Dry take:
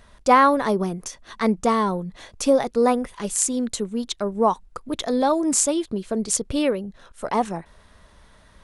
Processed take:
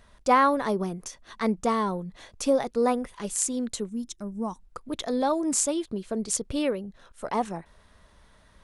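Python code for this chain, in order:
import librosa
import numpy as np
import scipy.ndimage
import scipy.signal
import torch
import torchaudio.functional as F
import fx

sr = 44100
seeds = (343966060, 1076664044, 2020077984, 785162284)

y = fx.spec_box(x, sr, start_s=3.89, length_s=0.7, low_hz=350.0, high_hz=5100.0, gain_db=-11)
y = y * 10.0 ** (-5.0 / 20.0)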